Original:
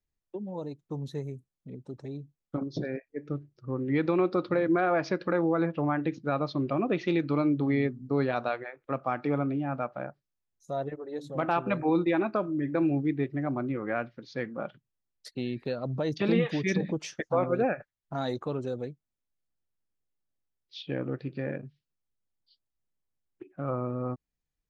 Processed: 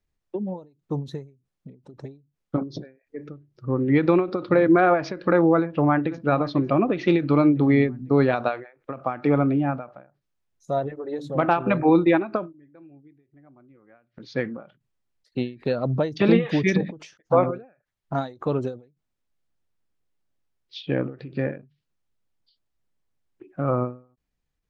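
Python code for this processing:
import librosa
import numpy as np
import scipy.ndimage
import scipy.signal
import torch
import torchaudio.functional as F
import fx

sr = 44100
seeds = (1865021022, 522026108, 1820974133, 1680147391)

y = fx.echo_throw(x, sr, start_s=5.57, length_s=0.65, ms=500, feedback_pct=45, wet_db=-14.5)
y = fx.gate_flip(y, sr, shuts_db=-34.0, range_db=-31, at=(12.51, 14.19), fade=0.02)
y = fx.lowpass(y, sr, hz=3800.0, slope=6)
y = fx.end_taper(y, sr, db_per_s=160.0)
y = y * librosa.db_to_amplitude(8.5)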